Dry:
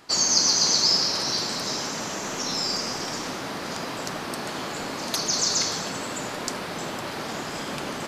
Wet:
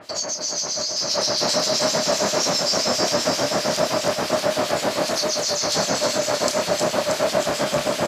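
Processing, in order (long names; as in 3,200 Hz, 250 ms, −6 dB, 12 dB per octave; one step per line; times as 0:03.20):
high-pass filter 53 Hz
parametric band 610 Hz +15 dB 0.28 octaves
compressor whose output falls as the input rises −27 dBFS, ratio −1
two-band tremolo in antiphase 7.6 Hz, depth 100%, crossover 2,400 Hz
double-tracking delay 29 ms −7 dB
on a send: delay with a high-pass on its return 315 ms, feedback 73%, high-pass 2,300 Hz, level −4 dB
on the sum: level +8 dB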